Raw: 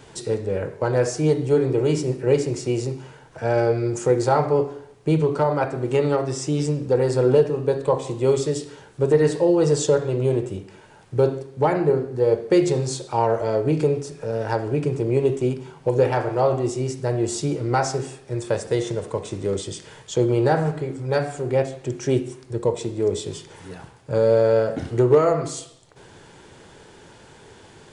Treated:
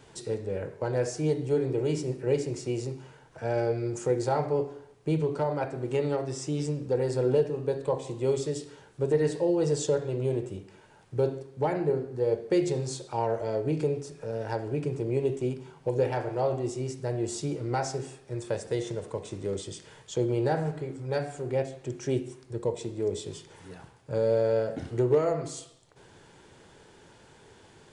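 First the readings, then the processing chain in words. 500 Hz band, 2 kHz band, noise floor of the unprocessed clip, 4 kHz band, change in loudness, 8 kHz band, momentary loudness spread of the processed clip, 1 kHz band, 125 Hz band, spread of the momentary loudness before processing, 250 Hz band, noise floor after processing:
−7.5 dB, −8.5 dB, −48 dBFS, −7.5 dB, −7.5 dB, −7.5 dB, 11 LU, −9.0 dB, −7.5 dB, 11 LU, −7.5 dB, −56 dBFS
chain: dynamic equaliser 1,200 Hz, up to −6 dB, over −41 dBFS, Q 3
level −7.5 dB

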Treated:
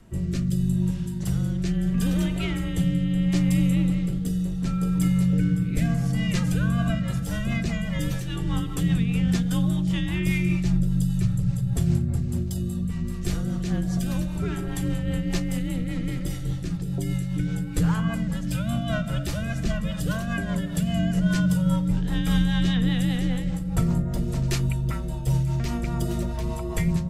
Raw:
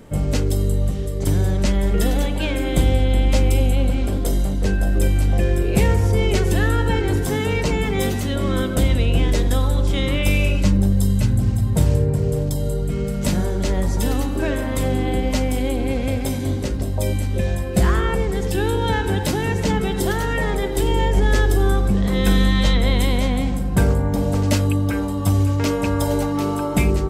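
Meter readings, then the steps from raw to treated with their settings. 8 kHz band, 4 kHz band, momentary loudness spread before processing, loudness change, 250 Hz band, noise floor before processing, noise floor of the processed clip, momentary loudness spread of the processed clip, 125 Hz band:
−7.5 dB, −7.5 dB, 5 LU, −5.0 dB, −1.5 dB, −23 dBFS, −30 dBFS, 6 LU, −4.0 dB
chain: frequency shifter −230 Hz
rotating-speaker cabinet horn 0.75 Hz, later 5 Hz, at 0:06.32
level −4.5 dB

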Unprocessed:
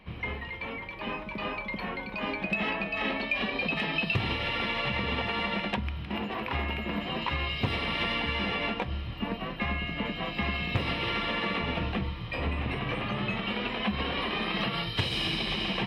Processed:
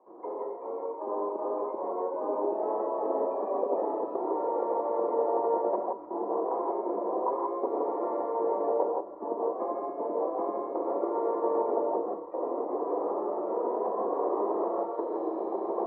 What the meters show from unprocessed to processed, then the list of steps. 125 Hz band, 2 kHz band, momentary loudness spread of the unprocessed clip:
below −30 dB, below −30 dB, 6 LU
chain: elliptic band-pass filter 330–1,000 Hz, stop band 50 dB
dynamic equaliser 430 Hz, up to +7 dB, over −51 dBFS, Q 0.79
reverb whose tail is shaped and stops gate 190 ms rising, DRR −1 dB

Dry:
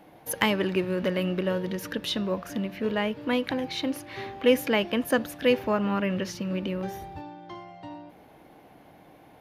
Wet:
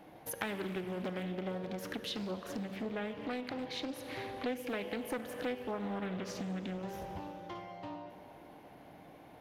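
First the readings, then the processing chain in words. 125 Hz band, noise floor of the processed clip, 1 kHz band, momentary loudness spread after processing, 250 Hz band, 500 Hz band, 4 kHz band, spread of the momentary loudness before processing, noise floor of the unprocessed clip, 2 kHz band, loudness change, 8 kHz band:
−10.0 dB, −55 dBFS, −9.0 dB, 16 LU, −11.0 dB, −12.5 dB, −12.0 dB, 18 LU, −54 dBFS, −12.0 dB, −12.0 dB, −9.5 dB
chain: delay with a band-pass on its return 90 ms, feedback 85%, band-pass 650 Hz, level −16.5 dB
four-comb reverb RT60 2.3 s, combs from 32 ms, DRR 10.5 dB
downward compressor 3 to 1, threshold −36 dBFS, peak gain reduction 15.5 dB
highs frequency-modulated by the lows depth 0.4 ms
level −2.5 dB

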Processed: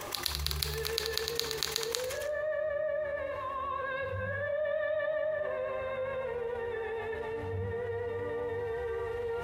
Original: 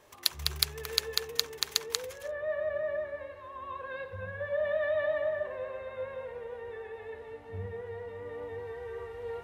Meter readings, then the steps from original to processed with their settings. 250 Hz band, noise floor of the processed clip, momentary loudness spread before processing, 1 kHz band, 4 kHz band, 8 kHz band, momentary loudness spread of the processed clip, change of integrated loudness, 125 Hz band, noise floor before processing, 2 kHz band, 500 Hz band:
+5.5 dB, −38 dBFS, 12 LU, +5.0 dB, −2.5 dB, −1.5 dB, 4 LU, +0.5 dB, +4.0 dB, −48 dBFS, +2.0 dB, +1.5 dB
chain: backwards echo 115 ms −11 dB
coupled-rooms reverb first 0.83 s, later 3 s, from −25 dB, DRR 16.5 dB
envelope flattener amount 70%
level −6.5 dB

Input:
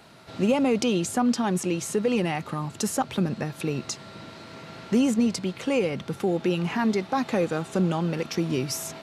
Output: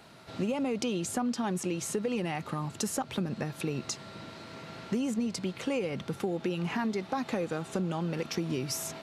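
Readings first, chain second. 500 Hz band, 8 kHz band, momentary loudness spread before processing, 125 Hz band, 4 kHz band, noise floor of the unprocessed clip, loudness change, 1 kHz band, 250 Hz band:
−7.0 dB, −4.0 dB, 11 LU, −6.0 dB, −5.0 dB, −45 dBFS, −7.0 dB, −6.5 dB, −7.5 dB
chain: downward compressor, threshold −25 dBFS, peak gain reduction 8 dB
level −2.5 dB

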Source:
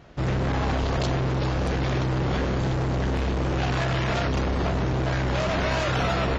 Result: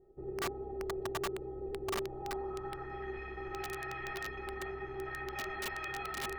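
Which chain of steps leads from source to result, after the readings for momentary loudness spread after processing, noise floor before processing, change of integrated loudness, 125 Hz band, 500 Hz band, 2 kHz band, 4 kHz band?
4 LU, −25 dBFS, −14.5 dB, −26.0 dB, −11.0 dB, −10.5 dB, −13.5 dB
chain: brickwall limiter −23 dBFS, peak gain reduction 5 dB
stiff-string resonator 380 Hz, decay 0.24 s, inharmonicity 0.03
low-pass filter sweep 460 Hz → 2,000 Hz, 0:01.91–0:02.98
wrap-around overflow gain 34 dB
level +3 dB

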